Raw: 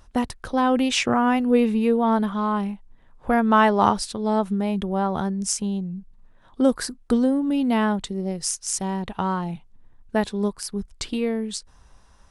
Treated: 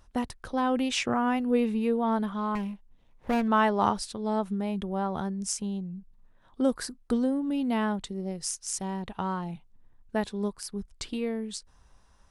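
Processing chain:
0:02.55–0:03.48: lower of the sound and its delayed copy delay 0.32 ms
level −6.5 dB

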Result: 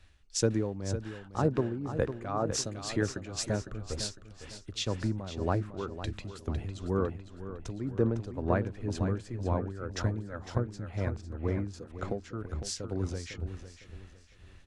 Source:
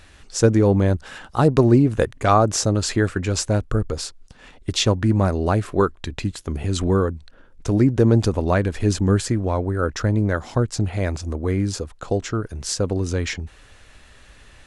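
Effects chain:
low-pass filter 3,700 Hz 6 dB per octave
downward compressor 2.5 to 1, threshold −33 dBFS, peak gain reduction 15.5 dB
amplitude tremolo 2 Hz, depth 58%
on a send: repeating echo 505 ms, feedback 51%, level −7.5 dB
on the sum: multiband upward and downward expander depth 70%

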